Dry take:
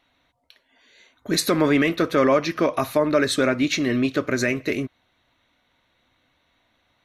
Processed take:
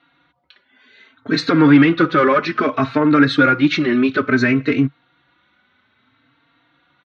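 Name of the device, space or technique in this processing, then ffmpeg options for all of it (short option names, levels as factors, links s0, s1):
barber-pole flanger into a guitar amplifier: -filter_complex "[0:a]asplit=2[s0][s1];[s1]adelay=3.8,afreqshift=0.6[s2];[s0][s2]amix=inputs=2:normalize=1,asoftclip=type=tanh:threshold=0.2,highpass=94,equalizer=f=140:t=q:w=4:g=7,equalizer=f=280:t=q:w=4:g=6,equalizer=f=610:t=q:w=4:g=-6,equalizer=f=1400:t=q:w=4:g=10,lowpass=f=4200:w=0.5412,lowpass=f=4200:w=1.3066,volume=2.37"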